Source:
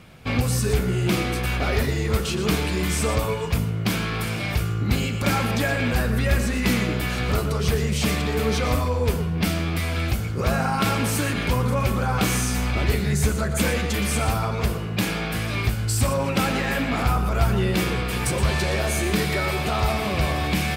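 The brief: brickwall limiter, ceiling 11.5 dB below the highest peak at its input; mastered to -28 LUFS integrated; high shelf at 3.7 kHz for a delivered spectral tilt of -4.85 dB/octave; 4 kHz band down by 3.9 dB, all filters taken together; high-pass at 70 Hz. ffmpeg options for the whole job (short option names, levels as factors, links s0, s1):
-af "highpass=70,highshelf=f=3700:g=5.5,equalizer=f=4000:t=o:g=-9,volume=1.06,alimiter=limit=0.106:level=0:latency=1"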